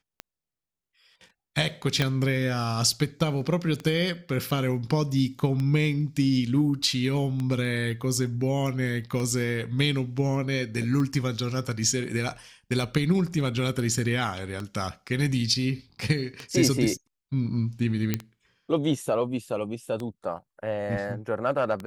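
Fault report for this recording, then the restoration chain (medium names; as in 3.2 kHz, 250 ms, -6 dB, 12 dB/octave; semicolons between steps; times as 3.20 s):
tick 33 1/3 rpm -19 dBFS
2.02 s: pop -10 dBFS
18.14 s: pop -10 dBFS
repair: de-click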